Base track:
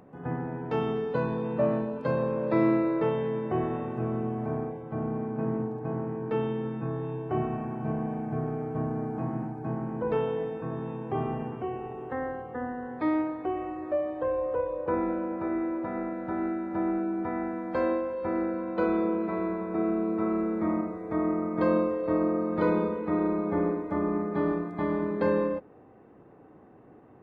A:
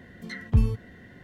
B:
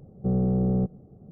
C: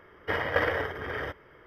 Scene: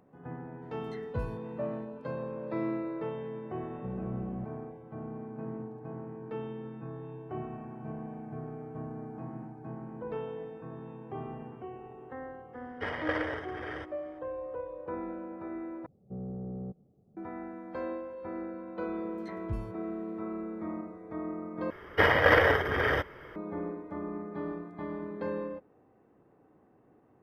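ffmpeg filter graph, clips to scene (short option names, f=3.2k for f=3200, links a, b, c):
-filter_complex "[1:a]asplit=2[a][b];[2:a]asplit=2[c][d];[3:a]asplit=2[e][f];[0:a]volume=-9.5dB[g];[e]aresample=22050,aresample=44100[h];[d]lowshelf=f=63:g=-11.5[i];[f]alimiter=level_in=15.5dB:limit=-1dB:release=50:level=0:latency=1[j];[g]asplit=3[k][l][m];[k]atrim=end=15.864[n];[i]atrim=end=1.31,asetpts=PTS-STARTPTS,volume=-14dB[o];[l]atrim=start=17.166:end=21.704[p];[j]atrim=end=1.66,asetpts=PTS-STARTPTS,volume=-9dB[q];[m]atrim=start=23.356[r];[a]atrim=end=1.23,asetpts=PTS-STARTPTS,volume=-16dB,afade=t=in:d=0.004:c=hsin,afade=t=out:st=1.226:d=0.004:c=hsin,adelay=620[s];[c]atrim=end=1.31,asetpts=PTS-STARTPTS,volume=-14.5dB,afade=t=in:d=0.004:c=hsin,afade=t=out:st=1.306:d=0.004:c=hsin,adelay=3590[t];[h]atrim=end=1.66,asetpts=PTS-STARTPTS,volume=-6.5dB,afade=t=in:d=0.004:c=hsin,afade=t=out:st=1.656:d=0.004:c=hsin,adelay=12530[u];[b]atrim=end=1.23,asetpts=PTS-STARTPTS,volume=-15.5dB,afade=t=in:d=0.004:c=hsin,afade=t=out:st=1.226:d=0.004:c=hsin,adelay=18960[v];[n][o]acrossfade=d=0.004:c1=hsin:c2=hsin[w];[w][p]acrossfade=d=0.004:c1=hsin:c2=hsin[x];[x][q]acrossfade=d=0.004:c1=hsin:c2=hsin[y];[y][r]acrossfade=d=0.004:c1=hsin:c2=hsin[z];[z][s][t][u][v]amix=inputs=5:normalize=0"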